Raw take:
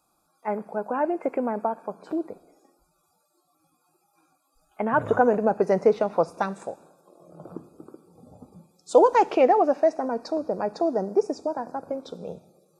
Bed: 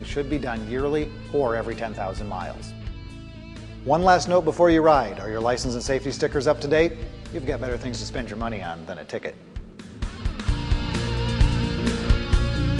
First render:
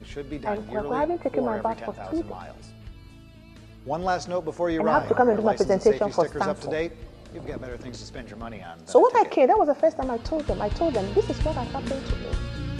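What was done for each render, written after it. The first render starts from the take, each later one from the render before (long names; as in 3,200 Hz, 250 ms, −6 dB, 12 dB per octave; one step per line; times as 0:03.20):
mix in bed −8.5 dB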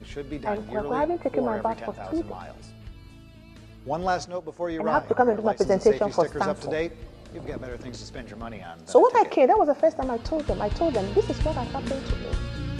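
0:04.25–0:05.61: expander for the loud parts, over −31 dBFS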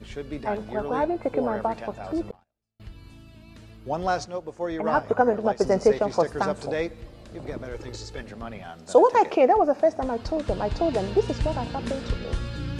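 0:02.31–0:02.80: noise gate −35 dBFS, range −42 dB
0:07.74–0:08.21: comb filter 2.3 ms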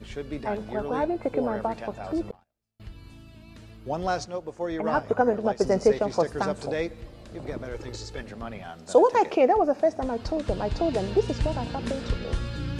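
dynamic equaliser 1,000 Hz, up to −3 dB, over −31 dBFS, Q 0.72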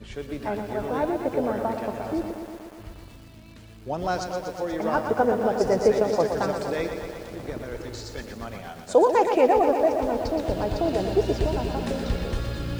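feedback echo at a low word length 120 ms, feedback 80%, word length 8 bits, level −7.5 dB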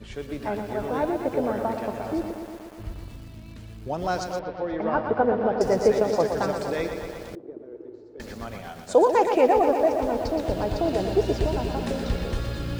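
0:02.78–0:03.88: low-shelf EQ 230 Hz +7.5 dB
0:04.39–0:05.61: Bessel low-pass filter 2,700 Hz, order 8
0:07.35–0:08.20: resonant band-pass 370 Hz, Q 3.8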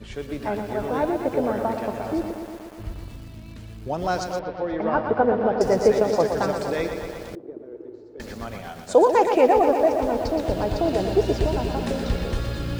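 level +2 dB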